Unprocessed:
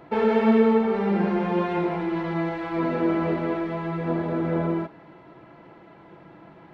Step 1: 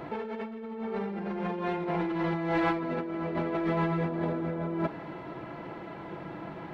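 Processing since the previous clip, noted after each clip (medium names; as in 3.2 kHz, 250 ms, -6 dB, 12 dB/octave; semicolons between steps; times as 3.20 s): compressor with a negative ratio -32 dBFS, ratio -1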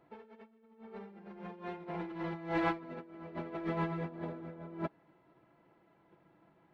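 upward expansion 2.5:1, over -40 dBFS; trim -3.5 dB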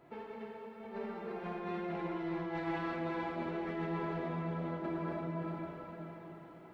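plate-style reverb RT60 4 s, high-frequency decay 0.9×, DRR -5.5 dB; reverse; compression 6:1, threshold -39 dBFS, peak gain reduction 16.5 dB; reverse; trim +4 dB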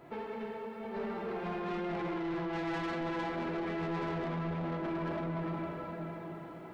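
saturation -39 dBFS, distortion -10 dB; trim +7 dB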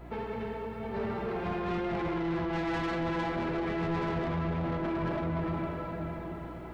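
octave divider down 1 oct, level -6 dB; hum 60 Hz, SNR 15 dB; trim +3.5 dB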